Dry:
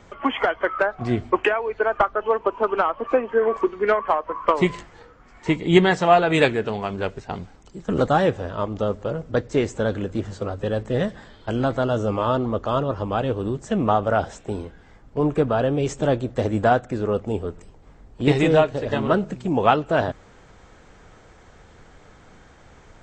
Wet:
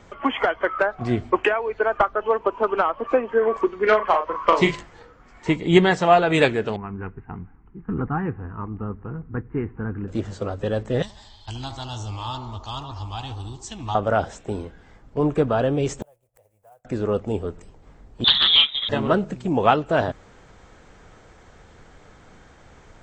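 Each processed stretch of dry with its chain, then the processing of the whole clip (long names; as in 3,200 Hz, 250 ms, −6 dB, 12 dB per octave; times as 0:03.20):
0:03.83–0:04.76: low-pass filter 6,800 Hz 24 dB per octave + high-shelf EQ 2,400 Hz +9 dB + double-tracking delay 37 ms −6.5 dB
0:06.76–0:10.08: Butterworth low-pass 3,100 Hz 72 dB per octave + parametric band 2,300 Hz −7.5 dB 2.2 octaves + phaser with its sweep stopped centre 1,400 Hz, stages 4
0:11.02–0:13.95: drawn EQ curve 100 Hz 0 dB, 180 Hz −18 dB, 300 Hz −13 dB, 550 Hz −28 dB, 850 Hz −3 dB, 1,400 Hz −15 dB, 4,300 Hz +9 dB, 9,200 Hz +4 dB + delay with a band-pass on its return 73 ms, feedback 66%, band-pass 650 Hz, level −7 dB
0:16.02–0:16.85: one scale factor per block 5 bits + drawn EQ curve 110 Hz 0 dB, 170 Hz −6 dB, 270 Hz −18 dB, 530 Hz +6 dB, 860 Hz +7 dB, 1,500 Hz −3 dB, 2,400 Hz +3 dB, 3,800 Hz −8 dB, 9,200 Hz +12 dB + gate with flip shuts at −21 dBFS, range −40 dB
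0:18.24–0:18.89: voice inversion scrambler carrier 3,800 Hz + highs frequency-modulated by the lows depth 0.28 ms
whole clip: no processing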